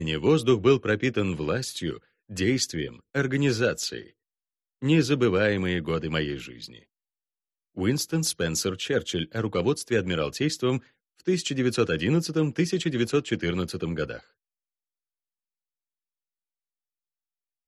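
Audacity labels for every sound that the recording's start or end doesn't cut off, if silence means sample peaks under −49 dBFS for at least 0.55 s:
4.820000	6.830000	sound
7.760000	14.230000	sound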